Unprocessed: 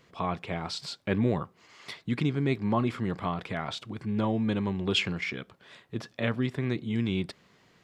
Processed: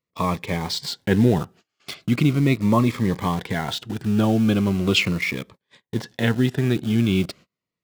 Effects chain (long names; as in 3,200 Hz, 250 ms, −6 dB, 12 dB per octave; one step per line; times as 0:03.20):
in parallel at −8 dB: bit-depth reduction 6 bits, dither none
on the sum: noise gate −49 dBFS, range −31 dB
phaser whose notches keep moving one way falling 0.39 Hz
level +6.5 dB